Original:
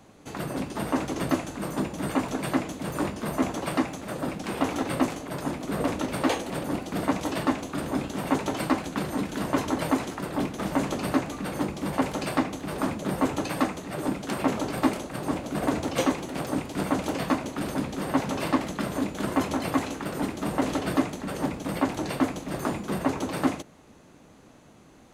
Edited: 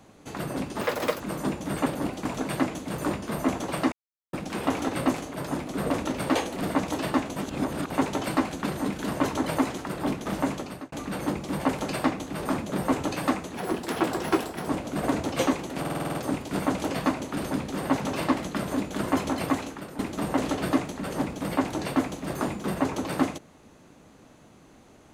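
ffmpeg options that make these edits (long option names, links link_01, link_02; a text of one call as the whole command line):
ffmpeg -i in.wav -filter_complex "[0:a]asplit=21[link_01][link_02][link_03][link_04][link_05][link_06][link_07][link_08][link_09][link_10][link_11][link_12][link_13][link_14][link_15][link_16][link_17][link_18][link_19][link_20][link_21];[link_01]atrim=end=0.814[link_22];[link_02]atrim=start=0.81:end=1.53,asetpts=PTS-STARTPTS,asetrate=81144,aresample=44100[link_23];[link_03]atrim=start=1.526:end=2.192[link_24];[link_04]atrim=start=6.548:end=6.942[link_25];[link_05]atrim=start=2.188:end=3.86,asetpts=PTS-STARTPTS,afade=type=out:start_time=1.668:duration=0.004:curve=hsin[link_26];[link_06]atrim=start=3.86:end=4.27,asetpts=PTS-STARTPTS,volume=0[link_27];[link_07]atrim=start=4.27:end=6.552,asetpts=PTS-STARTPTS,afade=type=in:duration=0.004:curve=hsin[link_28];[link_08]atrim=start=6.938:end=7.692[link_29];[link_09]atrim=start=7.688:end=8.232,asetpts=PTS-STARTPTS,areverse[link_30];[link_10]atrim=start=8.228:end=11.25,asetpts=PTS-STARTPTS,afade=type=out:start_time=2.482:duration=0.54[link_31];[link_11]atrim=start=11.25:end=13.874,asetpts=PTS-STARTPTS,afade=type=in:duration=0.004:curve=hsin[link_32];[link_12]atrim=start=13.87:end=15.27,asetpts=PTS-STARTPTS,asetrate=54243,aresample=44100,atrim=end_sample=50195,asetpts=PTS-STARTPTS[link_33];[link_13]atrim=start=15.266:end=16.442[link_34];[link_14]atrim=start=16.388:end=16.442[link_35];[link_15]atrim=start=16.388:end=16.442[link_36];[link_16]atrim=start=16.388:end=16.442[link_37];[link_17]atrim=start=16.388:end=16.442[link_38];[link_18]atrim=start=16.388:end=16.442[link_39];[link_19]atrim=start=16.388:end=16.442[link_40];[link_20]atrim=start=16.388:end=20.23,asetpts=PTS-STARTPTS,afade=type=out:start_time=3.342:duration=0.5:silence=0.237137[link_41];[link_21]atrim=start=20.23,asetpts=PTS-STARTPTS,afade=type=in:duration=0.004:curve=hsin:silence=0.237137[link_42];[link_22][link_23]acrossfade=duration=0.004:curve1=hsin:curve2=hsin[link_43];[link_43][link_24]acrossfade=duration=0.004:curve1=hsin:curve2=hsin[link_44];[link_44][link_25]acrossfade=duration=0.004:curve1=hsin:curve2=hsin[link_45];[link_26][link_27][link_28]concat=n=3:v=0:a=1[link_46];[link_45][link_46]acrossfade=duration=0.004:curve1=hsin:curve2=hsin[link_47];[link_47][link_29]acrossfade=duration=0.004:curve1=hsin:curve2=hsin[link_48];[link_48][link_30]acrossfade=duration=0.004:curve1=hsin:curve2=hsin[link_49];[link_31][link_32]concat=n=2:v=0:a=1[link_50];[link_49][link_50]acrossfade=duration=0.004:curve1=hsin:curve2=hsin[link_51];[link_51][link_33]acrossfade=duration=0.004:curve1=hsin:curve2=hsin[link_52];[link_52][link_34]acrossfade=duration=0.004:curve1=hsin:curve2=hsin[link_53];[link_53][link_35]acrossfade=duration=0.004:curve1=hsin:curve2=hsin[link_54];[link_54][link_36]acrossfade=duration=0.004:curve1=hsin:curve2=hsin[link_55];[link_55][link_37]acrossfade=duration=0.004:curve1=hsin:curve2=hsin[link_56];[link_56][link_38]acrossfade=duration=0.004:curve1=hsin:curve2=hsin[link_57];[link_57][link_39]acrossfade=duration=0.004:curve1=hsin:curve2=hsin[link_58];[link_58][link_40]acrossfade=duration=0.004:curve1=hsin:curve2=hsin[link_59];[link_41][link_42]concat=n=2:v=0:a=1[link_60];[link_59][link_60]acrossfade=duration=0.004:curve1=hsin:curve2=hsin" out.wav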